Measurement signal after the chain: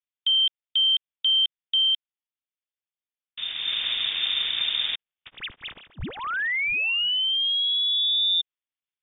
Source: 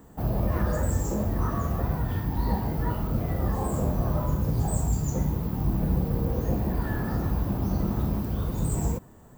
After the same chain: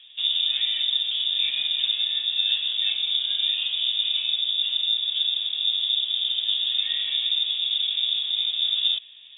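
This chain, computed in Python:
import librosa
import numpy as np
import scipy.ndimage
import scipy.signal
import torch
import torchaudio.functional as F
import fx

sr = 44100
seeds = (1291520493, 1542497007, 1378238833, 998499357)

y = scipy.ndimage.median_filter(x, 15, mode='constant')
y = fx.rider(y, sr, range_db=4, speed_s=0.5)
y = fx.freq_invert(y, sr, carrier_hz=3600)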